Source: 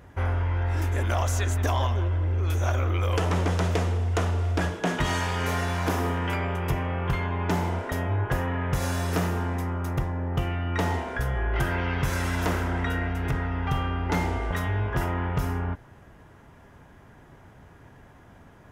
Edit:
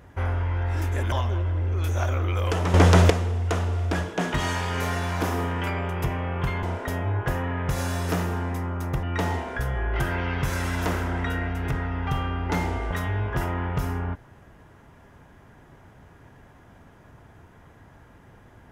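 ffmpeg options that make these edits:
-filter_complex "[0:a]asplit=6[a][b][c][d][e][f];[a]atrim=end=1.122[g];[b]atrim=start=1.778:end=3.402[h];[c]atrim=start=3.398:end=3.762,asetpts=PTS-STARTPTS,volume=9.5dB[i];[d]atrim=start=3.758:end=7.292[j];[e]atrim=start=7.668:end=10.072[k];[f]atrim=start=10.628[l];[g][h]acrossfade=d=0.004:c1=hsin:c2=hsin[m];[m][i]acrossfade=d=0.004:c1=hsin:c2=hsin[n];[n][j]acrossfade=d=0.004:c1=hsin:c2=hsin[o];[o][k]acrossfade=d=0.004:c1=hsin:c2=hsin[p];[p][l]acrossfade=d=0.004:c1=hsin:c2=hsin"

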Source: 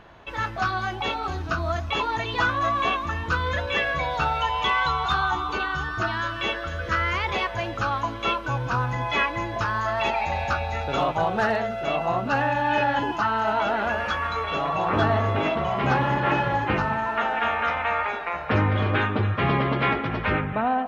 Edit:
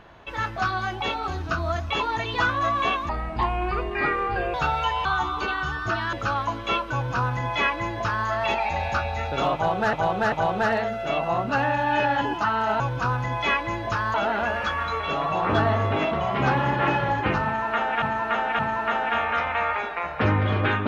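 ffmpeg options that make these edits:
-filter_complex "[0:a]asplit=11[a][b][c][d][e][f][g][h][i][j][k];[a]atrim=end=3.094[l];[b]atrim=start=3.09:end=4.12,asetpts=PTS-STARTPTS,asetrate=31311,aresample=44100,atrim=end_sample=63976,asetpts=PTS-STARTPTS[m];[c]atrim=start=4.116:end=4.632[n];[d]atrim=start=5.168:end=6.252[o];[e]atrim=start=7.688:end=11.492[p];[f]atrim=start=11.098:end=11.492[q];[g]atrim=start=11.098:end=13.582[r];[h]atrim=start=8.488:end=9.832[s];[i]atrim=start=13.578:end=17.462[t];[j]atrim=start=16.888:end=17.462[u];[k]atrim=start=16.888[v];[l][m]acrossfade=d=0.004:c1=hsin:c2=hsin[w];[w][n]acrossfade=d=0.004:c1=hsin:c2=hsin[x];[x][o]acrossfade=d=0.004:c1=hsin:c2=hsin[y];[y][p]acrossfade=d=0.004:c1=hsin:c2=hsin[z];[z][q]acrossfade=d=0.004:c1=hsin:c2=hsin[aa];[aa][r]acrossfade=d=0.004:c1=hsin:c2=hsin[ab];[ab][s]acrossfade=d=0.004:c1=hsin:c2=hsin[ac];[ac][t]acrossfade=d=0.004:c1=hsin:c2=hsin[ad];[ad][u]acrossfade=d=0.004:c1=hsin:c2=hsin[ae];[ae][v]acrossfade=d=0.004:c1=hsin:c2=hsin"

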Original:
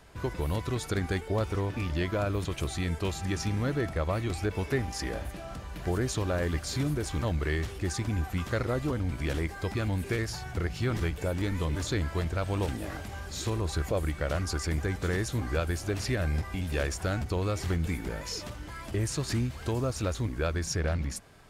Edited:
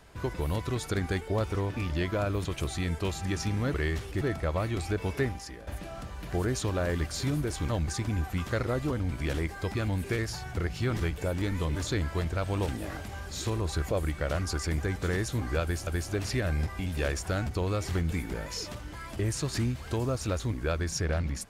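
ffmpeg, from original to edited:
-filter_complex "[0:a]asplit=6[a][b][c][d][e][f];[a]atrim=end=3.742[g];[b]atrim=start=7.408:end=7.882[h];[c]atrim=start=3.738:end=5.2,asetpts=PTS-STARTPTS,afade=t=out:st=1.052:d=0.41:c=qua:silence=0.223872[i];[d]atrim=start=5.2:end=7.412,asetpts=PTS-STARTPTS,afade=t=in:d=0.004:c=hsin:silence=0.223872[j];[e]atrim=start=7.878:end=15.872[k];[f]atrim=start=15.618[l];[g][h]acrossfade=d=0.004:c1=hsin:c2=hsin[m];[i][j]concat=n=2:v=0:a=1[n];[m][n]acrossfade=d=0.004:c1=hsin:c2=hsin[o];[o][k]acrossfade=d=0.004:c1=hsin:c2=hsin[p];[p][l]acrossfade=d=0.004:c1=hsin:c2=hsin"

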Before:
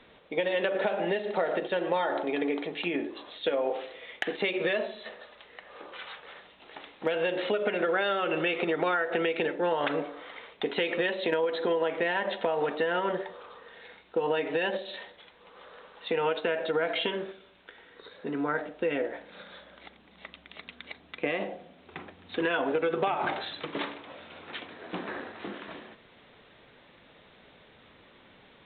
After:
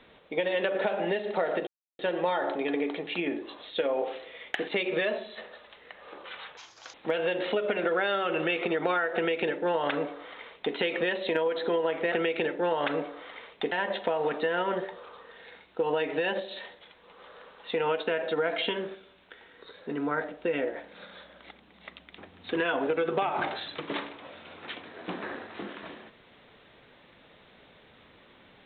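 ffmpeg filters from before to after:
-filter_complex "[0:a]asplit=7[a][b][c][d][e][f][g];[a]atrim=end=1.67,asetpts=PTS-STARTPTS,afade=t=out:st=1.666:d=0.004:c=hsin,apad=pad_dur=0.32[h];[b]atrim=start=1.67:end=6.254,asetpts=PTS-STARTPTS,afade=t=in:d=0.004:c=hsin[i];[c]atrim=start=6.25:end=6.91,asetpts=PTS-STARTPTS,asetrate=78939,aresample=44100,atrim=end_sample=16260,asetpts=PTS-STARTPTS[j];[d]atrim=start=6.906:end=12.092[k];[e]atrim=start=9.118:end=10.722[l];[f]atrim=start=12.088:end=20.552[m];[g]atrim=start=22.028[n];[h][i]concat=n=2:v=0:a=1[o];[o][j]acrossfade=d=0.004:c1=hsin:c2=hsin[p];[p][k]acrossfade=d=0.004:c1=hsin:c2=hsin[q];[q][l]acrossfade=d=0.004:c1=hsin:c2=hsin[r];[r][m]acrossfade=d=0.004:c1=hsin:c2=hsin[s];[s][n]acrossfade=d=0.004:c1=hsin:c2=hsin"

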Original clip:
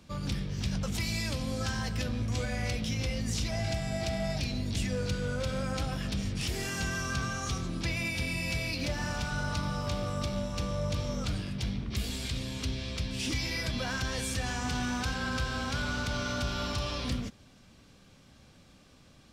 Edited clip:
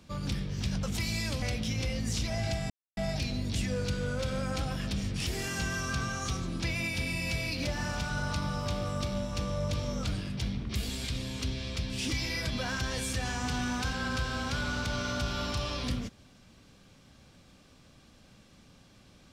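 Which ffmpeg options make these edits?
-filter_complex "[0:a]asplit=4[a][b][c][d];[a]atrim=end=1.422[e];[b]atrim=start=2.628:end=3.91,asetpts=PTS-STARTPTS,afade=t=out:st=1.278:d=0.004:c=hsin[f];[c]atrim=start=3.91:end=4.18,asetpts=PTS-STARTPTS,volume=0[g];[d]atrim=start=4.18,asetpts=PTS-STARTPTS,afade=t=in:d=0.004:c=hsin[h];[f][g][h]concat=n=3:v=0:a=1[i];[e][i]acrossfade=d=0.004:c1=hsin:c2=hsin"

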